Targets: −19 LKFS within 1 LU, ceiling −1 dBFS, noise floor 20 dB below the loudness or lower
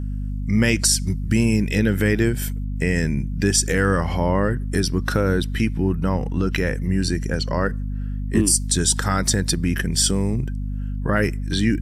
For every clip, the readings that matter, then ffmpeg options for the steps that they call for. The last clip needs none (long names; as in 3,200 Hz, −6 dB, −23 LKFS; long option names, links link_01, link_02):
mains hum 50 Hz; hum harmonics up to 250 Hz; level of the hum −23 dBFS; integrated loudness −21.0 LKFS; sample peak −5.0 dBFS; target loudness −19.0 LKFS
→ -af "bandreject=frequency=50:width_type=h:width=4,bandreject=frequency=100:width_type=h:width=4,bandreject=frequency=150:width_type=h:width=4,bandreject=frequency=200:width_type=h:width=4,bandreject=frequency=250:width_type=h:width=4"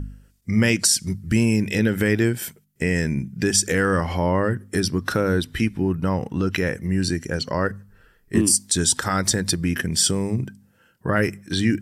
mains hum none found; integrated loudness −21.5 LKFS; sample peak −6.0 dBFS; target loudness −19.0 LKFS
→ -af "volume=2.5dB"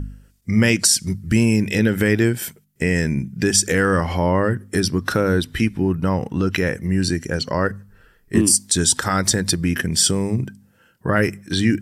integrated loudness −19.0 LKFS; sample peak −3.5 dBFS; background noise floor −57 dBFS